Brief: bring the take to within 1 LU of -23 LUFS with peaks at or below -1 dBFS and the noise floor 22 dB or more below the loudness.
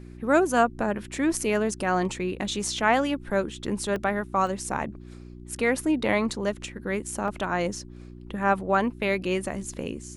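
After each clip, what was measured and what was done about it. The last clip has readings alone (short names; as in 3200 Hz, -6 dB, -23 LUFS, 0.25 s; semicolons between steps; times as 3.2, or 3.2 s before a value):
dropouts 4; longest dropout 2.1 ms; hum 60 Hz; harmonics up to 360 Hz; hum level -41 dBFS; loudness -26.5 LUFS; peak -7.0 dBFS; loudness target -23.0 LUFS
-> interpolate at 3.96/4.47/5.59/7.28, 2.1 ms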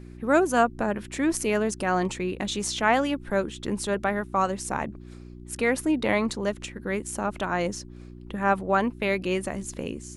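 dropouts 0; hum 60 Hz; harmonics up to 360 Hz; hum level -41 dBFS
-> de-hum 60 Hz, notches 6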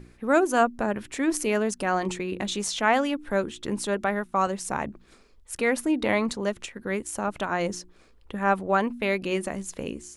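hum none; loudness -26.5 LUFS; peak -7.5 dBFS; loudness target -23.0 LUFS
-> gain +3.5 dB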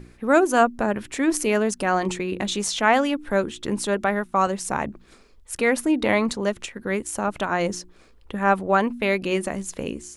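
loudness -23.0 LUFS; peak -4.0 dBFS; noise floor -52 dBFS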